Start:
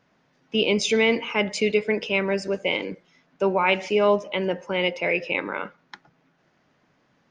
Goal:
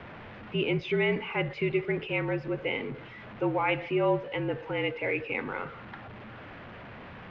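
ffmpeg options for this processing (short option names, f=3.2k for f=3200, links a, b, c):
-af "aeval=exprs='val(0)+0.5*0.0266*sgn(val(0))':c=same,afreqshift=-48,lowpass=f=2.8k:w=0.5412,lowpass=f=2.8k:w=1.3066,volume=-7dB"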